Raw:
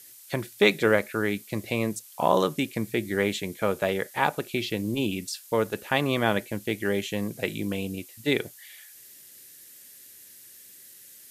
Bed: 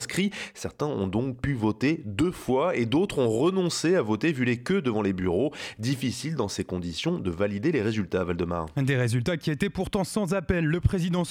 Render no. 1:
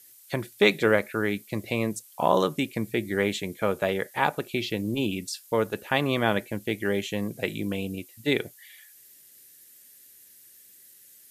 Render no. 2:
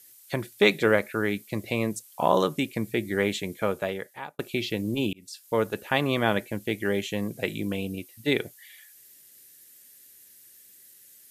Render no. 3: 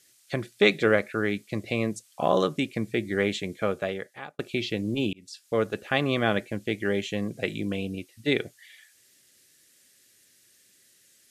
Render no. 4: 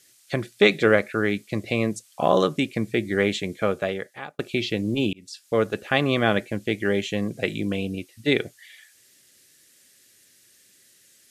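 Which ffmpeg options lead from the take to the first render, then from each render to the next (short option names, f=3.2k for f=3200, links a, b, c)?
-af "afftdn=nr=6:nf=-50"
-filter_complex "[0:a]asettb=1/sr,asplit=3[a][b][c];[a]atrim=end=7.764[d];[b]atrim=start=7.76:end=8.4,asetpts=PTS-STARTPTS,afade=t=in:d=0.004:c=qsin,afade=t=out:st=0.636:d=0.004:c=qsin,bandreject=f=7.2k:w=12[e];[c]atrim=start=8.396[f];[d][e]acrossfade=d=0.004:c1=hsin:c2=qsin[g];[g][f]acrossfade=d=0.004:c1=qsin:c2=hsin,asplit=3[h][i][j];[h]atrim=end=4.39,asetpts=PTS-STARTPTS,afade=t=out:st=3.59:d=0.8[k];[i]atrim=start=4.39:end=5.13,asetpts=PTS-STARTPTS,afade=t=in:d=0.004:c=hsin,afade=t=out:st=0.736:d=0.004:c=hsin[l];[j]atrim=start=5.13,asetpts=PTS-STARTPTS,afade=t=in:d=0.44[m];[k][l][m]concat=n=3:v=0:a=1"
-af "lowpass=7.3k,bandreject=f=930:w=5.2"
-af "volume=3.5dB,alimiter=limit=-3dB:level=0:latency=1"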